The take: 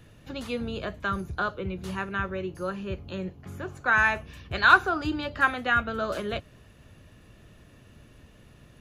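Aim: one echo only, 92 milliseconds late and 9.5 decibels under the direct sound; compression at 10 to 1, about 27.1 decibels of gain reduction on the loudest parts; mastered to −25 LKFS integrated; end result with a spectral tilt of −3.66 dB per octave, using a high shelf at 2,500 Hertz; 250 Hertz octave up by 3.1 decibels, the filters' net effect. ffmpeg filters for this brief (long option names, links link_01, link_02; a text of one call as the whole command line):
ffmpeg -i in.wav -af "equalizer=frequency=250:width_type=o:gain=4,highshelf=frequency=2500:gain=7,acompressor=threshold=-38dB:ratio=10,aecho=1:1:92:0.335,volume=17.5dB" out.wav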